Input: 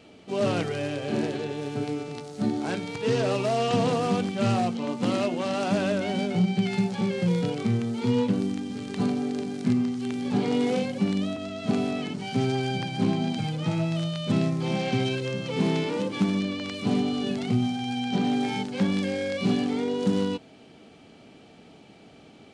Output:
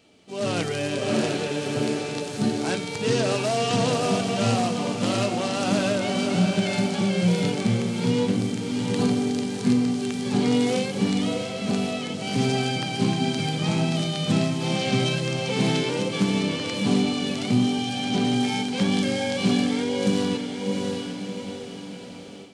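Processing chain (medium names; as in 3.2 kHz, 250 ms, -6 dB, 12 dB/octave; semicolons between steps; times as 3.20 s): treble shelf 3.9 kHz +10.5 dB; echo that smears into a reverb 702 ms, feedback 42%, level -5 dB; level rider gain up to 11.5 dB; trim -8 dB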